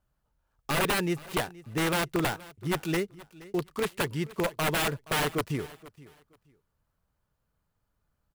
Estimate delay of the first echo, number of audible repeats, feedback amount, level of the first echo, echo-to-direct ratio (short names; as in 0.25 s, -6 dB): 0.474 s, 2, 22%, -20.0 dB, -20.0 dB